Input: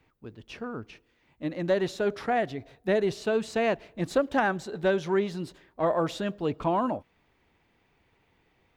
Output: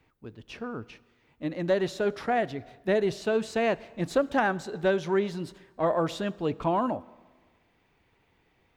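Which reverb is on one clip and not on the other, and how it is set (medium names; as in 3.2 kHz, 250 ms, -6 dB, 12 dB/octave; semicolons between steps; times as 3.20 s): plate-style reverb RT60 1.5 s, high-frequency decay 0.85×, DRR 20 dB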